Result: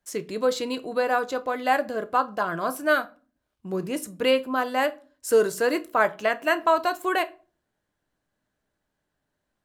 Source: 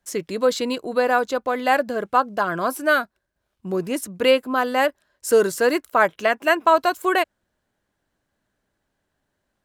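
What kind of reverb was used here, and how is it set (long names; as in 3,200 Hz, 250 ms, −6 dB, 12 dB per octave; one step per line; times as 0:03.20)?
rectangular room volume 210 cubic metres, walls furnished, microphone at 0.46 metres
level −4.5 dB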